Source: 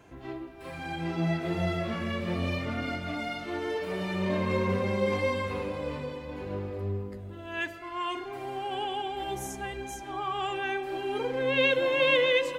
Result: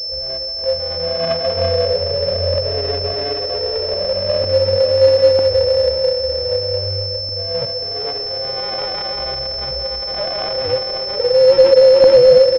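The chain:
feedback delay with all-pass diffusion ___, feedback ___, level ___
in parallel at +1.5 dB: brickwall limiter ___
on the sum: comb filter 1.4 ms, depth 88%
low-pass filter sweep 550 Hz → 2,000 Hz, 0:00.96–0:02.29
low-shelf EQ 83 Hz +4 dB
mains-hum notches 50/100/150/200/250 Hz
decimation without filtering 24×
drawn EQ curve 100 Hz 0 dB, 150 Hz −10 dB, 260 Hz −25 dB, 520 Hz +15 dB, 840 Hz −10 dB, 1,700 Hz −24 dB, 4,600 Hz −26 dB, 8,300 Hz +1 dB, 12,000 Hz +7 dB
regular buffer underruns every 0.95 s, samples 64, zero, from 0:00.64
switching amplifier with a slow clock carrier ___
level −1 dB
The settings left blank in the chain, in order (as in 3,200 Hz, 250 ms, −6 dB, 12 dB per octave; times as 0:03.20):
542 ms, 56%, −15 dB, −23.5 dBFS, 5,300 Hz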